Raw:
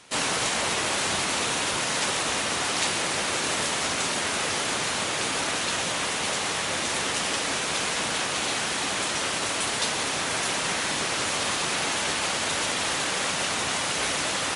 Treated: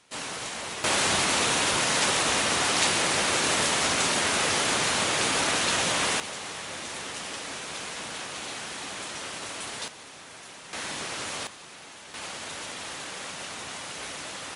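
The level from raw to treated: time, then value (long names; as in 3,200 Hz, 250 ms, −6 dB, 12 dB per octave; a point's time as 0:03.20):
−9 dB
from 0:00.84 +2 dB
from 0:06.20 −9 dB
from 0:09.88 −18 dB
from 0:10.73 −7 dB
from 0:11.47 −19 dB
from 0:12.14 −10.5 dB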